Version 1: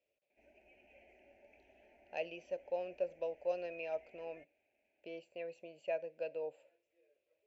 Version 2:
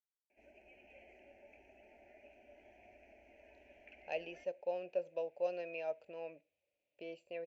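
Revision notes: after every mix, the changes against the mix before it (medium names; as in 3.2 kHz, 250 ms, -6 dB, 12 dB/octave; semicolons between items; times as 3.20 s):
speech: entry +1.95 s; background +3.5 dB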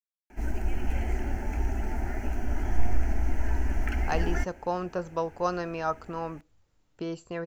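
background +11.0 dB; master: remove two resonant band-passes 1.2 kHz, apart 2.1 oct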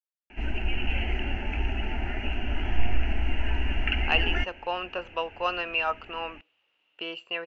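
speech: add high-pass 490 Hz 12 dB/octave; master: add resonant low-pass 2.8 kHz, resonance Q 14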